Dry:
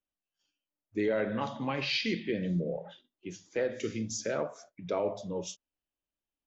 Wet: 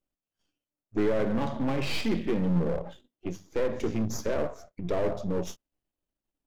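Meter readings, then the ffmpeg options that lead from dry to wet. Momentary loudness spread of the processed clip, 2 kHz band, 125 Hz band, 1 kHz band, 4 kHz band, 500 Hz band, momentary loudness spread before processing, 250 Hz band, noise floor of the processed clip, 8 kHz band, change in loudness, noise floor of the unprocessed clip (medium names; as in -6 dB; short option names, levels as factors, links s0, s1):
13 LU, -1.5 dB, +6.0 dB, +2.0 dB, -3.0 dB, +3.0 dB, 16 LU, +5.5 dB, under -85 dBFS, no reading, +3.0 dB, under -85 dBFS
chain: -filter_complex "[0:a]aeval=exprs='if(lt(val(0),0),0.251*val(0),val(0))':c=same,tiltshelf=f=920:g=6,asplit=2[s0][s1];[s1]aeval=exprs='0.0355*(abs(mod(val(0)/0.0355+3,4)-2)-1)':c=same,volume=0.631[s2];[s0][s2]amix=inputs=2:normalize=0,volume=1.33"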